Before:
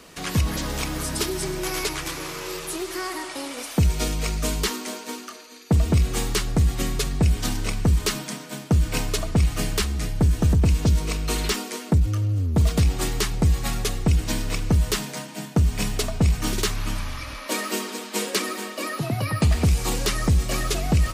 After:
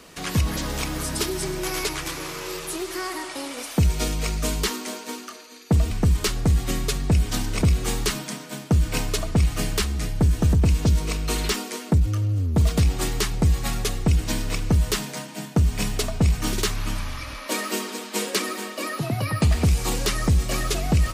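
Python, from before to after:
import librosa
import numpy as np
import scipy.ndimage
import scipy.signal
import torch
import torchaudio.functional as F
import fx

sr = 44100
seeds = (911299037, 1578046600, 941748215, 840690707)

y = fx.edit(x, sr, fx.swap(start_s=5.91, length_s=0.48, other_s=7.73, other_length_s=0.37), tone=tone)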